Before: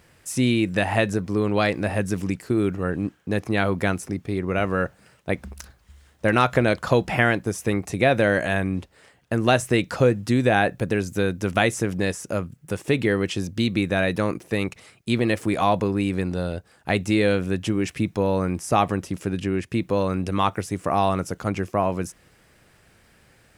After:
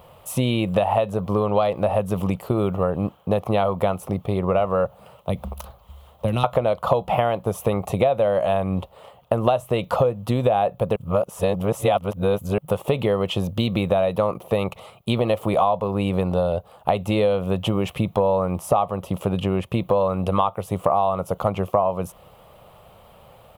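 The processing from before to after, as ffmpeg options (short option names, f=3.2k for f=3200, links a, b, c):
-filter_complex "[0:a]asettb=1/sr,asplit=3[a][b][c];[a]atrim=end=4.854[d];[b]atrim=start=4.85:end=6.44,asetpts=PTS-STARTPTS,afade=t=in:d=0.004:c=qsin,afade=t=out:st=1.586:d=0.004:c=qsin,acrossover=split=270|3000[e][f][g];[f]acompressor=threshold=-38dB:ratio=6:attack=3.2:release=140:knee=2.83:detection=peak[h];[e][h][g]amix=inputs=3:normalize=0[i];[c]atrim=start=6.436[j];[d][i]acrossfade=d=0.004:c1=hsin:c2=qsin[k];[k][j]acrossfade=d=0.004:c1=qsin:c2=hsin,asplit=3[l][m][n];[l]atrim=end=10.962[o];[m]atrim=start=10.958:end=12.582,asetpts=PTS-STARTPTS,areverse[p];[n]atrim=start=12.578[q];[o][p]acrossfade=d=0.004:c1=hsin:c2=hsin[r];[r][q]acrossfade=d=0.004:c1=hsin:c2=hsin,firequalizer=gain_entry='entry(190,0);entry(290,-9);entry(550,10);entry(1200,7);entry(1600,-14);entry(3100,2);entry(5100,-14);entry(8600,-10);entry(13000,4)':delay=0.05:min_phase=1,acompressor=threshold=-23dB:ratio=6,volume=6dB"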